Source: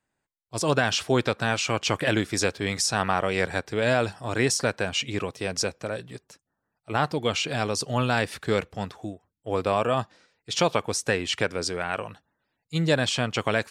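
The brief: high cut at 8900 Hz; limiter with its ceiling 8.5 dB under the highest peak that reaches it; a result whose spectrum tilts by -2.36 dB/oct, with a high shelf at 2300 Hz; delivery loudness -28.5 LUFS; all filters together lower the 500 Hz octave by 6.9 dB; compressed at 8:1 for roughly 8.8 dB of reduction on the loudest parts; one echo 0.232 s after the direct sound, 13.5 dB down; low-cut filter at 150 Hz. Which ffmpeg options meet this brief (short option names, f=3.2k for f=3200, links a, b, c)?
-af "highpass=150,lowpass=8.9k,equalizer=f=500:t=o:g=-9,highshelf=f=2.3k:g=7.5,acompressor=threshold=-26dB:ratio=8,alimiter=limit=-20dB:level=0:latency=1,aecho=1:1:232:0.211,volume=5dB"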